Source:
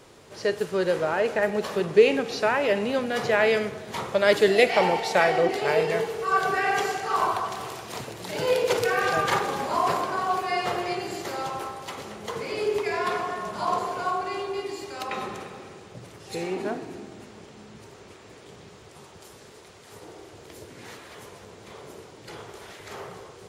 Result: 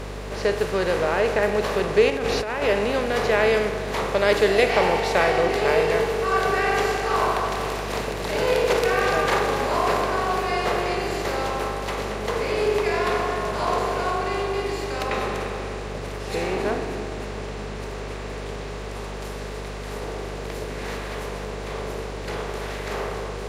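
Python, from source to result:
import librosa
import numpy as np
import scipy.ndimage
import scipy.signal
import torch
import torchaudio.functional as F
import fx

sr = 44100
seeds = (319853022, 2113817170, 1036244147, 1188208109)

y = fx.bin_compress(x, sr, power=0.6)
y = fx.add_hum(y, sr, base_hz=50, snr_db=11)
y = fx.over_compress(y, sr, threshold_db=-23.0, ratio=-1.0, at=(2.1, 2.62))
y = F.gain(torch.from_numpy(y), -2.5).numpy()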